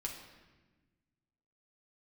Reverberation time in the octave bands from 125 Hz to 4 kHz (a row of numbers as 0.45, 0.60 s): 2.1, 1.9, 1.4, 1.1, 1.2, 1.0 s